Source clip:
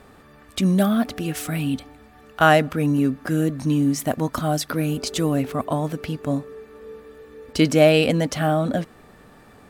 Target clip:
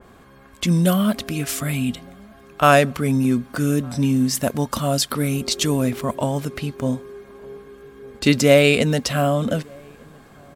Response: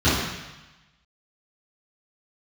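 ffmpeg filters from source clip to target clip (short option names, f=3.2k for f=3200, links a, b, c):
-filter_complex "[0:a]asplit=2[a][b];[b]adelay=1108,volume=-28dB,highshelf=f=4k:g=-24.9[c];[a][c]amix=inputs=2:normalize=0,asetrate=40517,aresample=44100,adynamicequalizer=threshold=0.0126:dfrequency=2500:dqfactor=0.7:tfrequency=2500:tqfactor=0.7:attack=5:release=100:ratio=0.375:range=3:mode=boostabove:tftype=highshelf,volume=1dB"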